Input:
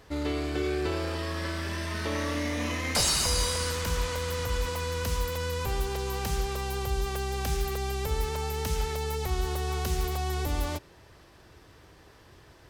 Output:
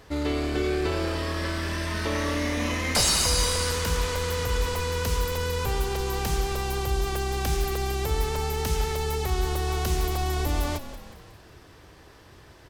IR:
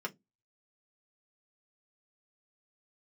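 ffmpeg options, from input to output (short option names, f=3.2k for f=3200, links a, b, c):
-filter_complex "[0:a]acontrast=89,asplit=2[a][b];[b]asplit=5[c][d][e][f][g];[c]adelay=182,afreqshift=-38,volume=-13dB[h];[d]adelay=364,afreqshift=-76,volume=-18.5dB[i];[e]adelay=546,afreqshift=-114,volume=-24dB[j];[f]adelay=728,afreqshift=-152,volume=-29.5dB[k];[g]adelay=910,afreqshift=-190,volume=-35.1dB[l];[h][i][j][k][l]amix=inputs=5:normalize=0[m];[a][m]amix=inputs=2:normalize=0,volume=-4dB"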